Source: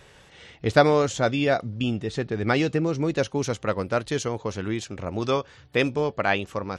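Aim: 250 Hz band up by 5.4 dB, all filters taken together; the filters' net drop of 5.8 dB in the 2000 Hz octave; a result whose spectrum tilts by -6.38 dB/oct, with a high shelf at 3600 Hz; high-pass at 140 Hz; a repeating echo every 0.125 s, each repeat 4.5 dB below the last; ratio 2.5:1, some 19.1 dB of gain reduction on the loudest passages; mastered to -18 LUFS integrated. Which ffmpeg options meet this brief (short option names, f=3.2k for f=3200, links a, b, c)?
-af "highpass=140,equalizer=f=250:t=o:g=7.5,equalizer=f=2k:t=o:g=-6.5,highshelf=f=3.6k:g=-6.5,acompressor=threshold=-41dB:ratio=2.5,aecho=1:1:125|250|375|500|625|750|875|1000|1125:0.596|0.357|0.214|0.129|0.0772|0.0463|0.0278|0.0167|0.01,volume=18.5dB"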